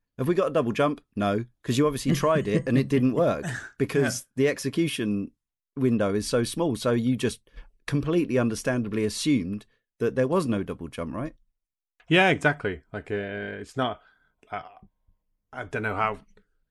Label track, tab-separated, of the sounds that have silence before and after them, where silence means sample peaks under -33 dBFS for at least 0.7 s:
12.100000	14.660000	sound